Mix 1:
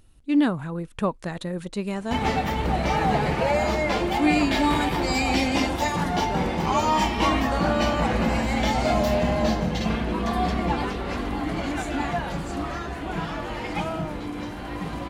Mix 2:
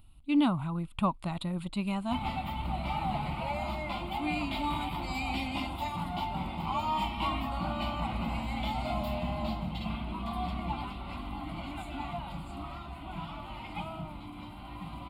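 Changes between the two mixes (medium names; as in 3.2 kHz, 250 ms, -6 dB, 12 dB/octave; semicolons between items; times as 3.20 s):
background -8.0 dB; master: add static phaser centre 1.7 kHz, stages 6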